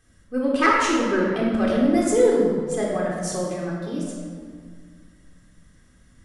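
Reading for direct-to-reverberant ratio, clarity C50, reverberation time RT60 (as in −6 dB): −4.0 dB, 0.0 dB, 1.9 s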